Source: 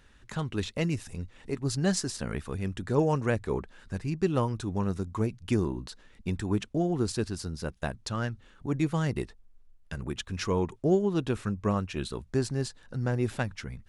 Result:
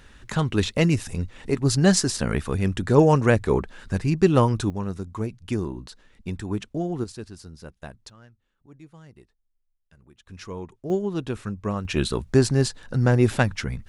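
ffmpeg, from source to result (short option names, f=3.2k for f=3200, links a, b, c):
-af "asetnsamples=n=441:p=0,asendcmd='4.7 volume volume 0dB;7.04 volume volume -7dB;8.1 volume volume -19.5dB;10.26 volume volume -7.5dB;10.9 volume volume 0dB;11.85 volume volume 10dB',volume=9dB"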